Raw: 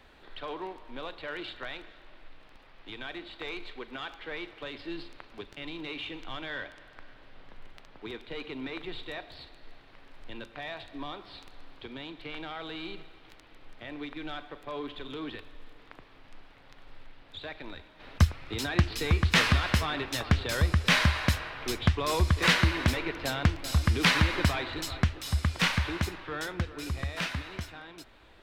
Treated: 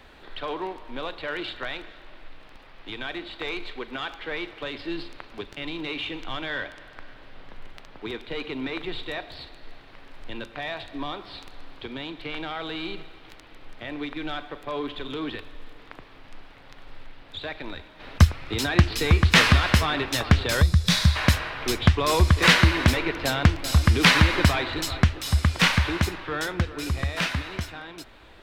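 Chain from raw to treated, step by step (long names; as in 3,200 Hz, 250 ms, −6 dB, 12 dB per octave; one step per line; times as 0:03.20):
gain on a spectral selection 0:20.63–0:21.16, 210–3,300 Hz −11 dB
level +6.5 dB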